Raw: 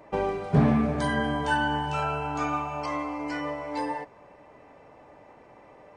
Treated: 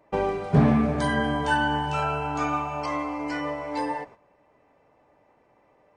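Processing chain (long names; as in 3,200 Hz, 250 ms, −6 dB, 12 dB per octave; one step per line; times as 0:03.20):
noise gate −47 dBFS, range −12 dB
level +2 dB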